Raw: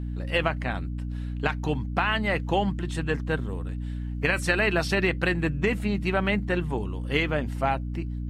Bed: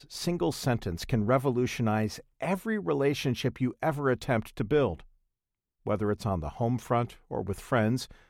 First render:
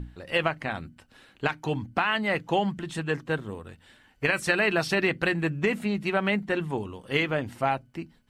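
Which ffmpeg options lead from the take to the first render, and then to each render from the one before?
-af "bandreject=f=60:t=h:w=6,bandreject=f=120:t=h:w=6,bandreject=f=180:t=h:w=6,bandreject=f=240:t=h:w=6,bandreject=f=300:t=h:w=6"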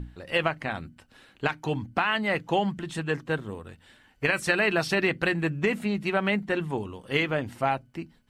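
-af anull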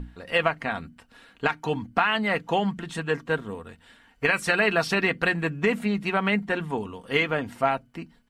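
-af "equalizer=f=1.2k:t=o:w=1.6:g=3.5,aecho=1:1:4.3:0.38"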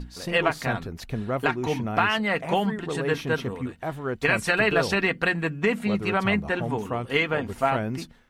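-filter_complex "[1:a]volume=-3dB[a];[0:a][a]amix=inputs=2:normalize=0"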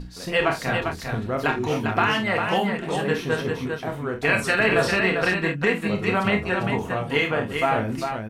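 -filter_complex "[0:a]asplit=2[a][b];[b]adelay=27,volume=-7.5dB[c];[a][c]amix=inputs=2:normalize=0,aecho=1:1:49|399:0.376|0.531"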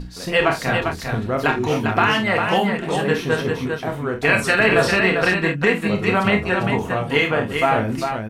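-af "volume=4dB,alimiter=limit=-3dB:level=0:latency=1"

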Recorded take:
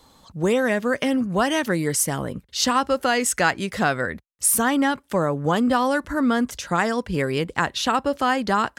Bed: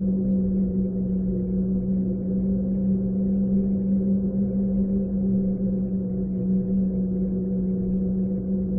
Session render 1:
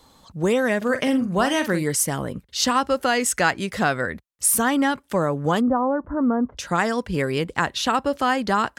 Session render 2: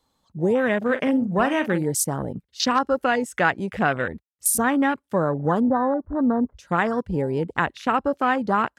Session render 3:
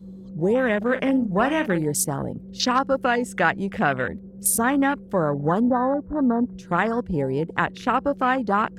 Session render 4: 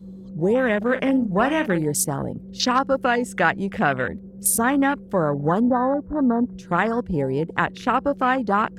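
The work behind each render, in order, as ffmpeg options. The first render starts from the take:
-filter_complex "[0:a]asettb=1/sr,asplit=3[a][b][c];[a]atrim=end=0.774[d];[b]atrim=start=0.77:end=1.83,asetpts=PTS-STARTPTS,afade=t=in:d=0.004:c=qsin,afade=t=out:st=1.056:d=0.004:c=qsin,asplit=2[e][f];[f]adelay=45,volume=-9.5dB[g];[e][g]amix=inputs=2:normalize=0,atrim=end_sample=46746[h];[c]atrim=start=1.826[i];[d][h]acrossfade=d=0.004:c1=hsin:c2=qsin[j];[j][i]acrossfade=d=0.004:c1=qsin:c2=hsin,asplit=3[k][l][m];[k]afade=t=out:st=5.6:d=0.02[n];[l]lowpass=f=1.1k:w=0.5412,lowpass=f=1.1k:w=1.3066,afade=t=in:st=5.6:d=0.02,afade=t=out:st=6.57:d=0.02[o];[m]afade=t=in:st=6.57:d=0.02[p];[n][o][p]amix=inputs=3:normalize=0"
-af "afwtdn=0.0501"
-filter_complex "[1:a]volume=-17dB[a];[0:a][a]amix=inputs=2:normalize=0"
-af "volume=1dB"

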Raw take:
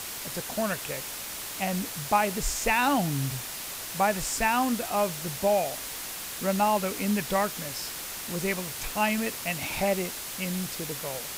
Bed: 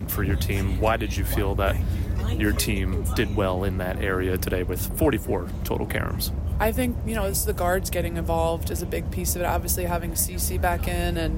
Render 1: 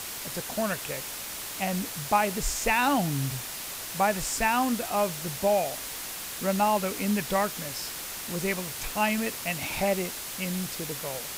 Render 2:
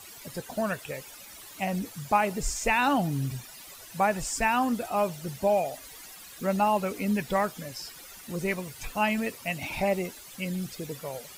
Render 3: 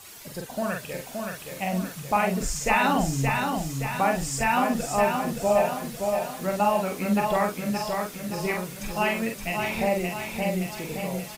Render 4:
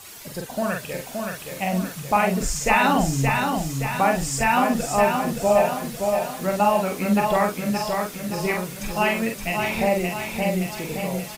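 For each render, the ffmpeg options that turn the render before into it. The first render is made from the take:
-af anull
-af "afftdn=nr=14:nf=-37"
-filter_complex "[0:a]asplit=2[a][b];[b]adelay=44,volume=-4dB[c];[a][c]amix=inputs=2:normalize=0,aecho=1:1:572|1144|1716|2288|2860|3432|4004:0.596|0.31|0.161|0.0838|0.0436|0.0226|0.0118"
-af "volume=3.5dB"

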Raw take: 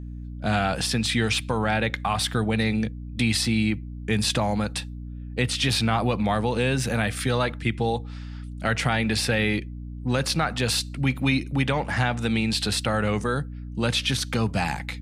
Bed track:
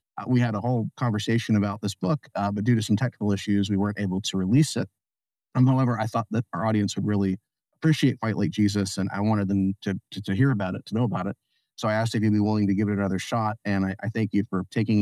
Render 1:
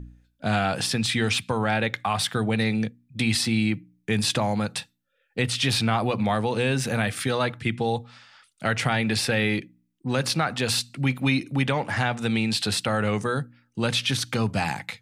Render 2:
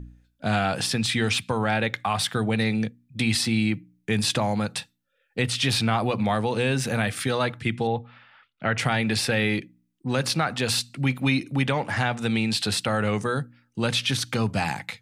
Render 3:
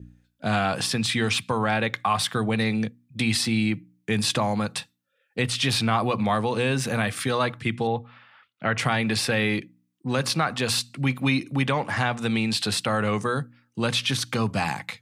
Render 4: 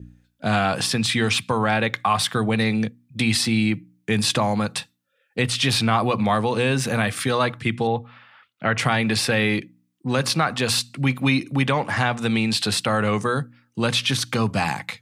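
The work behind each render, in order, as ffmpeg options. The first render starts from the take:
-af "bandreject=f=60:t=h:w=4,bandreject=f=120:t=h:w=4,bandreject=f=180:t=h:w=4,bandreject=f=240:t=h:w=4,bandreject=f=300:t=h:w=4"
-filter_complex "[0:a]asettb=1/sr,asplit=3[a][b][c];[a]atrim=end=7.874[d];[b]atrim=start=7.87:end=8.78,asetpts=PTS-STARTPTS,afade=t=in:d=0.004:c=qsin,afade=t=out:st=0.906:d=0.004:c=qsin,lowpass=f=3k:w=0.5412,lowpass=f=3k:w=1.3066[e];[c]atrim=start=8.776[f];[d][e]acrossfade=d=0.004:c1=hsin:c2=qsin[g];[g][f]acrossfade=d=0.004:c1=qsin:c2=hsin"
-af "highpass=83,adynamicequalizer=threshold=0.00355:dfrequency=1100:dqfactor=7.1:tfrequency=1100:tqfactor=7.1:attack=5:release=100:ratio=0.375:range=3.5:mode=boostabove:tftype=bell"
-af "volume=3dB"

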